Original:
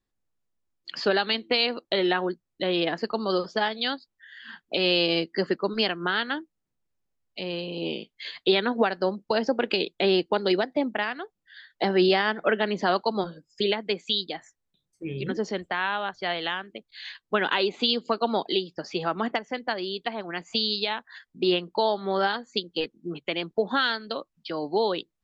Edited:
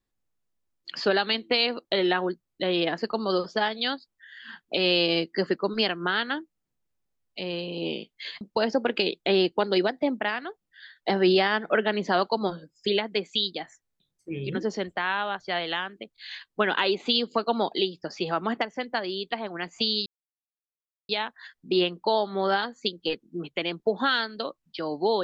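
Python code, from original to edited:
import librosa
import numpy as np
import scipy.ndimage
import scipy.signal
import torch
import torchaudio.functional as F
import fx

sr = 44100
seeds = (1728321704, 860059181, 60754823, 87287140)

y = fx.edit(x, sr, fx.cut(start_s=8.41, length_s=0.74),
    fx.insert_silence(at_s=20.8, length_s=1.03), tone=tone)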